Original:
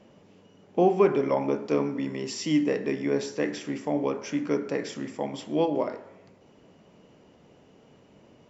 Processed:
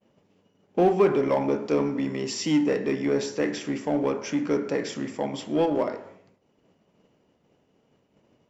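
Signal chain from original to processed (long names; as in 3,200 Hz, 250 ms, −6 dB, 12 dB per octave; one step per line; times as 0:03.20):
downward expander −46 dBFS
in parallel at −4 dB: hard clipping −26 dBFS, distortion −6 dB
on the sum: level −1 dB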